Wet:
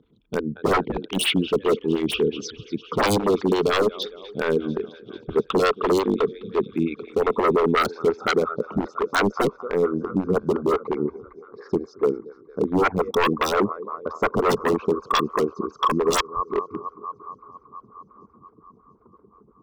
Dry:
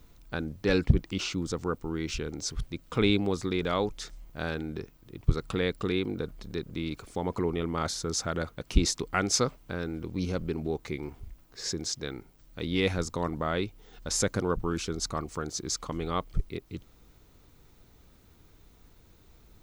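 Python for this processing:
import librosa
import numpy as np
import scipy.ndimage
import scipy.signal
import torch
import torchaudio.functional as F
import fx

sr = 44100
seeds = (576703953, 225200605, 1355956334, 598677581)

p1 = fx.envelope_sharpen(x, sr, power=2.0)
p2 = fx.rider(p1, sr, range_db=3, speed_s=2.0)
p3 = p1 + F.gain(torch.from_numpy(p2), 2.0).numpy()
p4 = fx.cabinet(p3, sr, low_hz=150.0, low_slope=12, high_hz=7000.0, hz=(210.0, 430.0, 660.0), db=(6, 10, -3))
p5 = fx.filter_sweep_lowpass(p4, sr, from_hz=3300.0, to_hz=1100.0, start_s=6.33, end_s=8.55, q=7.7)
p6 = p5 + fx.echo_thinned(p5, sr, ms=228, feedback_pct=81, hz=410.0, wet_db=-19.0, dry=0)
p7 = 10.0 ** (-14.5 / 20.0) * (np.abs((p6 / 10.0 ** (-14.5 / 20.0) + 3.0) % 4.0 - 2.0) - 1.0)
p8 = fx.stagger_phaser(p7, sr, hz=5.7)
y = F.gain(torch.from_numpy(p8), 3.0).numpy()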